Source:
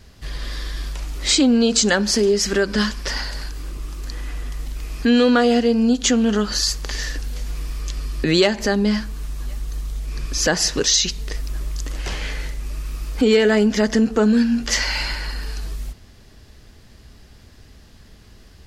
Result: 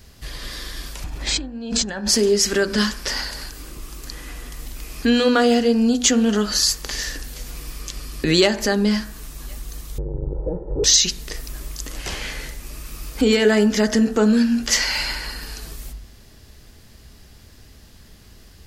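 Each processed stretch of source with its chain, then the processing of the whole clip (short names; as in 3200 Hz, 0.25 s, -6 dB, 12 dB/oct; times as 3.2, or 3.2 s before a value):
1.04–2.09 LPF 1600 Hz 6 dB/oct + comb 1.2 ms, depth 36% + negative-ratio compressor -26 dBFS
9.98–10.84 infinite clipping + inverse Chebyshev low-pass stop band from 3400 Hz, stop band 80 dB + comb 2.2 ms, depth 81%
whole clip: high shelf 9300 Hz +11.5 dB; de-hum 48.76 Hz, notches 39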